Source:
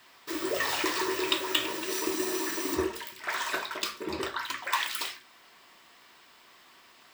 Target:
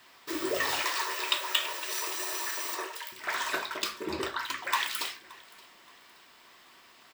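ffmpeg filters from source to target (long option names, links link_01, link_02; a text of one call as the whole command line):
ffmpeg -i in.wav -filter_complex "[0:a]asettb=1/sr,asplit=3[link_01][link_02][link_03];[link_01]atrim=end=0.824[link_04];[link_02]atrim=start=0.82:end=3.12,asetpts=PTS-STARTPTS,afade=type=in:duration=0.004:curve=qsin,afade=type=out:start_time=2.296:duration=0.004:curve=qsin,highpass=frequency=560:width=0.5412,highpass=frequency=560:width=1.3066[link_05];[link_03]atrim=start=3.116[link_06];[link_04][link_05]acrossfade=duration=0.004:curve1=hsin:curve2=qsin[link_07];[link_07][link_06]acrossfade=duration=0.004:curve1=qsin:curve2=hsin,aecho=1:1:573|1146|1719:0.0708|0.0276|0.0108" out.wav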